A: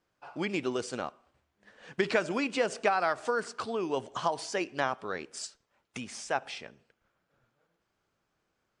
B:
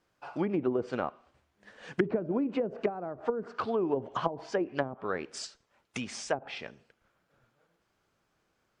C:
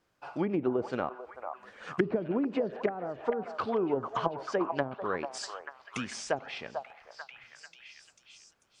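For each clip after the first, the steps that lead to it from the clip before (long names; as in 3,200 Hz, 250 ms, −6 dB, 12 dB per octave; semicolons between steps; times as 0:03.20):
treble cut that deepens with the level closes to 350 Hz, closed at −25.5 dBFS; level +3.5 dB
echo through a band-pass that steps 443 ms, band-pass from 860 Hz, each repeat 0.7 octaves, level −3 dB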